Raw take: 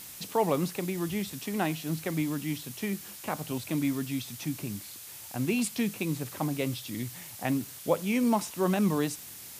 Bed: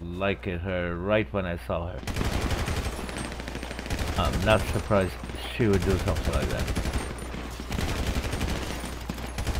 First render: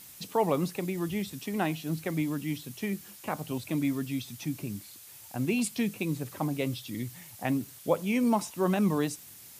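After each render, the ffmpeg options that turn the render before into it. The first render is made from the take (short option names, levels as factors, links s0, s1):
-af "afftdn=nr=6:nf=-45"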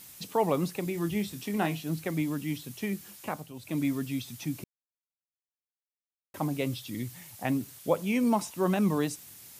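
-filter_complex "[0:a]asettb=1/sr,asplit=3[s0][s1][s2];[s0]atrim=end=0.844[s3];[s1]atrim=start=0.84:end=1.8,asetpts=PTS-STARTPTS,afade=t=in:d=0.004:c=qsin,afade=t=out:st=0.956:d=0.004:c=qsin,asplit=2[s4][s5];[s5]adelay=24,volume=0.376[s6];[s4][s6]amix=inputs=2:normalize=0,atrim=end_sample=42336[s7];[s2]atrim=start=1.796[s8];[s3][s7]acrossfade=d=0.004:c1=hsin:c2=qsin[s9];[s9][s8]acrossfade=d=0.004:c1=qsin:c2=hsin,asplit=4[s10][s11][s12][s13];[s10]atrim=end=3.53,asetpts=PTS-STARTPTS,afade=t=out:st=3.26:d=0.27:silence=0.237137[s14];[s11]atrim=start=3.53:end=4.64,asetpts=PTS-STARTPTS,afade=t=in:d=0.27:silence=0.237137,afade=t=out:st=1.106:d=0.004:c=hsin[s15];[s12]atrim=start=4.64:end=6.34,asetpts=PTS-STARTPTS,volume=0[s16];[s13]atrim=start=6.34,asetpts=PTS-STARTPTS,afade=t=in:d=0.004:c=hsin[s17];[s14][s15][s16][s17]concat=n=4:v=0:a=1"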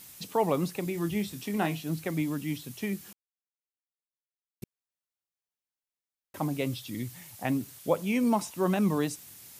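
-filter_complex "[0:a]asplit=3[s0][s1][s2];[s0]atrim=end=3.13,asetpts=PTS-STARTPTS,afade=t=out:st=3.126:d=0.004:c=hsin[s3];[s1]atrim=start=3.13:end=4.62,asetpts=PTS-STARTPTS,volume=0[s4];[s2]atrim=start=4.62,asetpts=PTS-STARTPTS,afade=t=in:d=0.004:c=hsin[s5];[s3][s4][s5]concat=n=3:v=0:a=1"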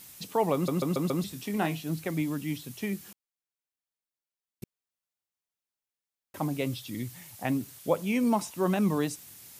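-filter_complex "[0:a]asplit=6[s0][s1][s2][s3][s4][s5];[s0]atrim=end=0.682[s6];[s1]atrim=start=0.538:end=0.682[s7];[s2]atrim=start=0.538:end=0.682[s8];[s3]atrim=start=0.538:end=0.682[s9];[s4]atrim=start=0.538:end=0.682[s10];[s5]atrim=start=1.238[s11];[s6][s7]acrossfade=d=0.004:c1=hsin:c2=hsin[s12];[s12][s8]acrossfade=d=0.004:c1=hsin:c2=hsin[s13];[s13][s9]acrossfade=d=0.004:c1=hsin:c2=hsin[s14];[s14][s10]acrossfade=d=0.004:c1=hsin:c2=hsin[s15];[s15][s11]acrossfade=d=0.004:c1=hsin:c2=hsin"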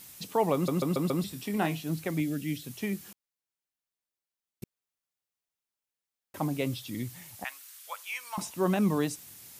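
-filter_complex "[0:a]asettb=1/sr,asplit=3[s0][s1][s2];[s0]atrim=end=0.834[s3];[s1]atrim=start=0.83:end=1.62,asetpts=PTS-STARTPTS,afade=t=in:d=0.004:c=qsin,afade=t=out:st=0.786:d=0.004:c=qsin,bandreject=f=6400:w=12[s4];[s2]atrim=start=1.616[s5];[s3][s4]acrossfade=d=0.004:c1=hsin:c2=qsin[s6];[s6][s5]acrossfade=d=0.004:c1=qsin:c2=hsin,asettb=1/sr,asplit=3[s7][s8][s9];[s7]atrim=end=2.204[s10];[s8]atrim=start=2.2:end=2.65,asetpts=PTS-STARTPTS,afade=t=in:d=0.004:c=qsin,afade=t=out:st=0.446:d=0.004:c=qsin,asuperstop=centerf=1000:order=4:qfactor=1.4[s11];[s9]atrim=start=2.646[s12];[s10][s11]acrossfade=d=0.004:c1=hsin:c2=qsin[s13];[s13][s12]acrossfade=d=0.004:c1=qsin:c2=hsin,asettb=1/sr,asplit=3[s14][s15][s16];[s14]atrim=end=7.444[s17];[s15]atrim=start=7.44:end=8.38,asetpts=PTS-STARTPTS,afade=t=in:d=0.004:c=qsin,afade=t=out:st=0.936:d=0.004:c=qsin,highpass=f=1100:w=0.5412,highpass=f=1100:w=1.3066[s18];[s16]atrim=start=8.376[s19];[s17][s18]acrossfade=d=0.004:c1=hsin:c2=qsin[s20];[s20][s19]acrossfade=d=0.004:c1=qsin:c2=hsin"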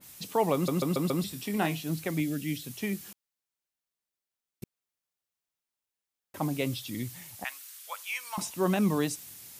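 -af "adynamicequalizer=threshold=0.00501:dfrequency=2000:dqfactor=0.7:tfrequency=2000:tqfactor=0.7:attack=5:release=100:ratio=0.375:range=1.5:mode=boostabove:tftype=highshelf"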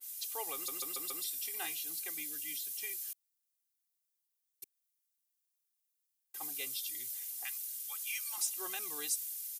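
-af "aderivative,aecho=1:1:2.5:0.92"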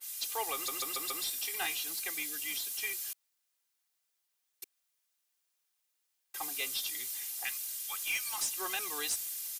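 -filter_complex "[0:a]asplit=2[s0][s1];[s1]highpass=f=720:p=1,volume=5.01,asoftclip=type=tanh:threshold=0.106[s2];[s0][s2]amix=inputs=2:normalize=0,lowpass=f=4100:p=1,volume=0.501,asplit=2[s3][s4];[s4]asoftclip=type=hard:threshold=0.0112,volume=0.316[s5];[s3][s5]amix=inputs=2:normalize=0"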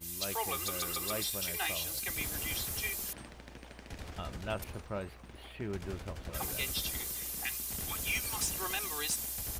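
-filter_complex "[1:a]volume=0.168[s0];[0:a][s0]amix=inputs=2:normalize=0"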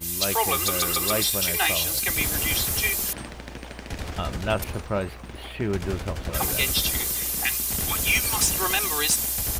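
-af "volume=3.98"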